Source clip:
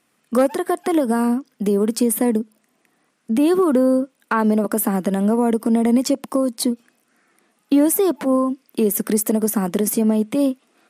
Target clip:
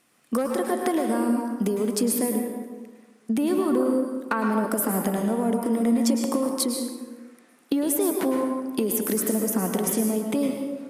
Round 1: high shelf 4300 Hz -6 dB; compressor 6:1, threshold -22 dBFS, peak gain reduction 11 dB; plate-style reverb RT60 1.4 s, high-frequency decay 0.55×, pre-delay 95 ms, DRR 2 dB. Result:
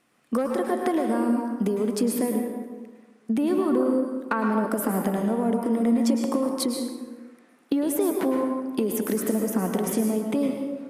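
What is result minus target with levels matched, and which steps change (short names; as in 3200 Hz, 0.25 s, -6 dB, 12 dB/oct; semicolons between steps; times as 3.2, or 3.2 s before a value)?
8000 Hz band -5.5 dB
change: high shelf 4300 Hz +3 dB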